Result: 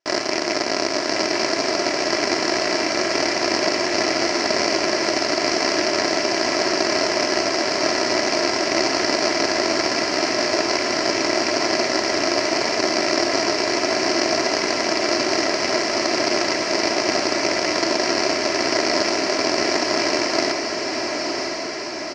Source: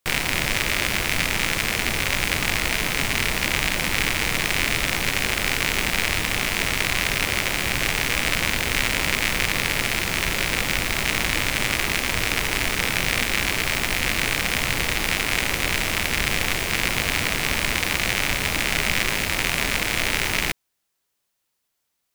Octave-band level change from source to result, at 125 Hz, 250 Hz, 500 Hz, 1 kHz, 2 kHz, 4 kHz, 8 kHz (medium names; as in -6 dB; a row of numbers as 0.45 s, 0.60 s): -10.5 dB, +8.0 dB, +12.5 dB, +6.0 dB, -2.0 dB, +2.5 dB, +0.5 dB